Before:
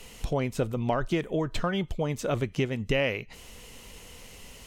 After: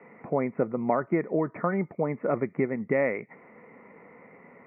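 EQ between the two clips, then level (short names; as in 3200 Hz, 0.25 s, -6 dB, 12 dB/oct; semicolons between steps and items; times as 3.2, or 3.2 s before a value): HPF 170 Hz 24 dB/oct; steep low-pass 2200 Hz 96 dB/oct; notch 1600 Hz, Q 6.7; +2.5 dB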